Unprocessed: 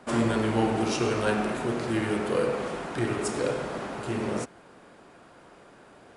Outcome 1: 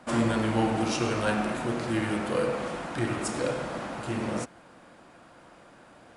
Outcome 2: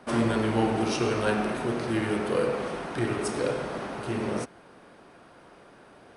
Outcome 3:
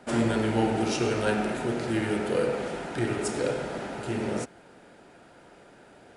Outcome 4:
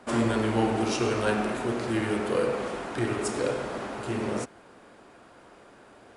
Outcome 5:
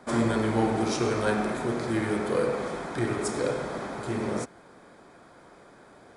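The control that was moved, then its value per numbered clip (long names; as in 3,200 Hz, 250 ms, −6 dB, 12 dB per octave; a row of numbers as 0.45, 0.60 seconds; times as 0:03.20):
notch filter, centre frequency: 410, 7,200, 1,100, 160, 2,800 Hertz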